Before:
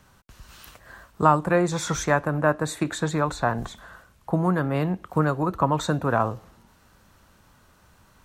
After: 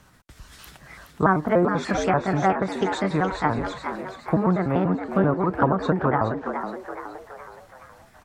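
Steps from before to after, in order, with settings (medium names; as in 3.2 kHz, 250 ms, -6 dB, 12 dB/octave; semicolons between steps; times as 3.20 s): pitch shift switched off and on +4 st, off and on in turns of 97 ms; low-pass that closes with the level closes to 1.1 kHz, closed at -18.5 dBFS; frequency-shifting echo 420 ms, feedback 49%, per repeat +96 Hz, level -8 dB; trim +2 dB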